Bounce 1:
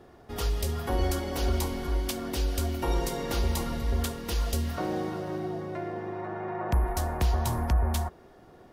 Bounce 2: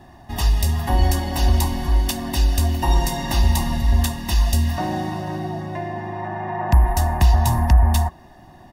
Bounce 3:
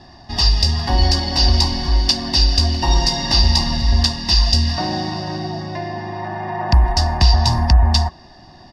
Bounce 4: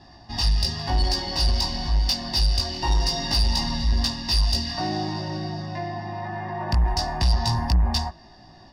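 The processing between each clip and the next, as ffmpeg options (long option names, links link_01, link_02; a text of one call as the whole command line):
ffmpeg -i in.wav -af "bandreject=frequency=1100:width=28,aecho=1:1:1.1:0.97,volume=5.5dB" out.wav
ffmpeg -i in.wav -af "lowpass=frequency=4900:width_type=q:width=10,volume=1.5dB" out.wav
ffmpeg -i in.wav -af "flanger=delay=18:depth=2.2:speed=0.25,asoftclip=type=tanh:threshold=-11.5dB,volume=-2.5dB" out.wav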